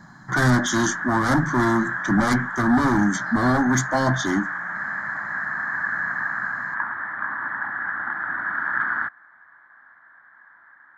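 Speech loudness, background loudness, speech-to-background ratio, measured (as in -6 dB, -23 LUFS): -21.5 LUFS, -27.0 LUFS, 5.5 dB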